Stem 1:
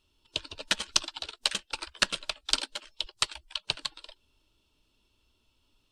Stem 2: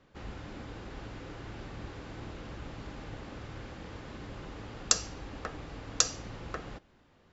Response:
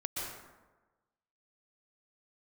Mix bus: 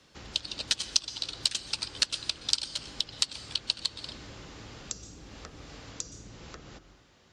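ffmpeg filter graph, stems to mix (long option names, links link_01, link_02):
-filter_complex "[0:a]equalizer=frequency=4600:width_type=o:width=0.77:gain=5,volume=-5.5dB,asplit=2[link_01][link_02];[link_02]volume=-18dB[link_03];[1:a]acrossover=split=150|440[link_04][link_05][link_06];[link_04]acompressor=threshold=-47dB:ratio=4[link_07];[link_05]acompressor=threshold=-51dB:ratio=4[link_08];[link_06]acompressor=threshold=-52dB:ratio=4[link_09];[link_07][link_08][link_09]amix=inputs=3:normalize=0,volume=-2dB,asplit=2[link_10][link_11];[link_11]volume=-11dB[link_12];[2:a]atrim=start_sample=2205[link_13];[link_03][link_12]amix=inputs=2:normalize=0[link_14];[link_14][link_13]afir=irnorm=-1:irlink=0[link_15];[link_01][link_10][link_15]amix=inputs=3:normalize=0,highpass=40,equalizer=frequency=6300:width_type=o:width=2.3:gain=13.5,acompressor=threshold=-30dB:ratio=2"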